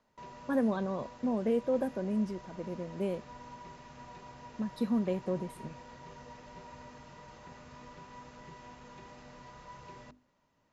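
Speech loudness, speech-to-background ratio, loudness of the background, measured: −33.5 LKFS, 17.0 dB, −50.5 LKFS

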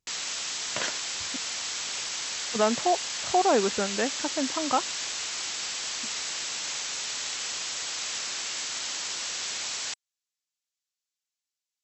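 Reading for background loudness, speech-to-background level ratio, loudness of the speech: −30.5 LKFS, 2.5 dB, −28.0 LKFS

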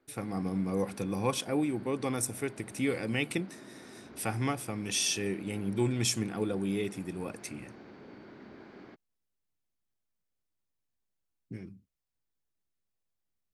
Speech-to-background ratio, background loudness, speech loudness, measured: 18.5 dB, −51.0 LKFS, −32.5 LKFS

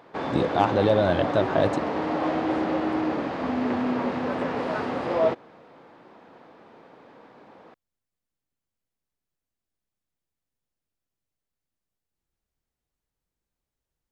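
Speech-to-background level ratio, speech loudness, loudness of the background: 2.5 dB, −24.5 LKFS, −27.0 LKFS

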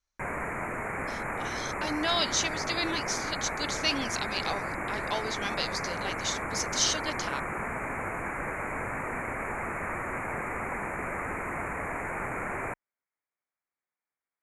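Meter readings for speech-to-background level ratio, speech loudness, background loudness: 2.0 dB, −31.5 LKFS, −33.5 LKFS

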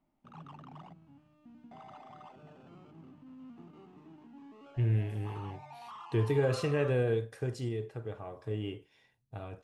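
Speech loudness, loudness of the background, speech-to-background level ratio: −33.0 LKFS, −51.5 LKFS, 18.5 dB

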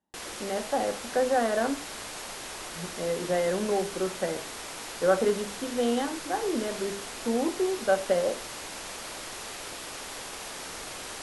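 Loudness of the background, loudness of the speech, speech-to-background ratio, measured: −37.5 LKFS, −29.0 LKFS, 8.5 dB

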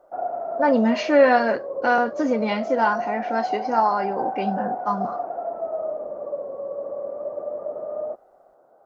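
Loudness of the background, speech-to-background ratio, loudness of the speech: −29.5 LKFS, 7.5 dB, −22.0 LKFS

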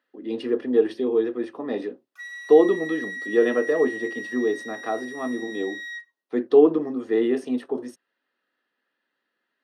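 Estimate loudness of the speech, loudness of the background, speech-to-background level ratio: −23.5 LKFS, −34.0 LKFS, 10.5 dB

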